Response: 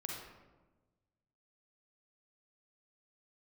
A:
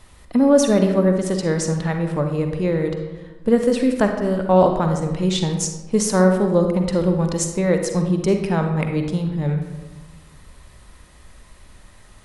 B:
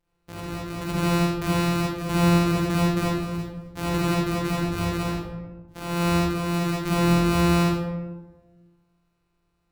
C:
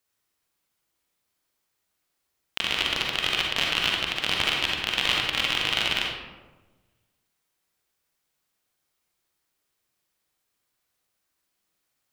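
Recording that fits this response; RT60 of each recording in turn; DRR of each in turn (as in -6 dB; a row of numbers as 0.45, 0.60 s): C; 1.2, 1.2, 1.2 s; 4.5, -7.0, -1.5 dB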